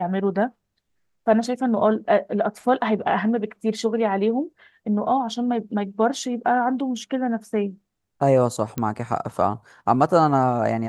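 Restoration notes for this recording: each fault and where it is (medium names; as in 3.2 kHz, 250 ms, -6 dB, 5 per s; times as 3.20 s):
8.78 s: pop -13 dBFS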